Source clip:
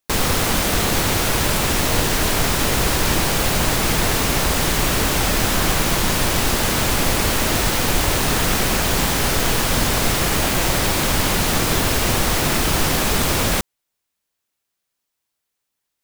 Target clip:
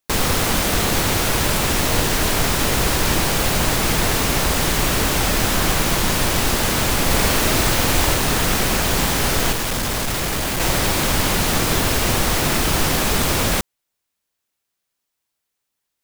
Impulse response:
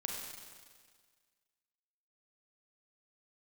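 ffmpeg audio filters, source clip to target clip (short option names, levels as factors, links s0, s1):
-filter_complex "[0:a]asettb=1/sr,asplit=3[s0][s1][s2];[s0]atrim=end=7.064[s3];[s1]atrim=start=7.06:end=8.14,asetpts=PTS-STARTPTS,afade=t=in:d=0.004:c=qsin,afade=t=out:st=1.076:d=0.004:c=qsin,asplit=2[s4][s5];[s5]adelay=46,volume=0.631[s6];[s4][s6]amix=inputs=2:normalize=0,atrim=end_sample=47628[s7];[s2]atrim=start=8.136[s8];[s3][s7]acrossfade=d=0.004:c1=hsin:c2=qsin[s9];[s9][s8]acrossfade=d=0.004:c1=qsin:c2=hsin,asettb=1/sr,asplit=3[s10][s11][s12];[s10]atrim=end=9.524[s13];[s11]atrim=start=9.52:end=10.6,asetpts=PTS-STARTPTS,afade=t=in:d=0.004:c=qsin,afade=t=out:st=1.076:d=0.004:c=qsin,volume=9.44,asoftclip=hard,volume=0.106[s14];[s12]atrim=start=10.596[s15];[s13][s14]acrossfade=d=0.004:c1=hsin:c2=qsin[s16];[s16][s15]acrossfade=d=0.004:c1=qsin:c2=hsin"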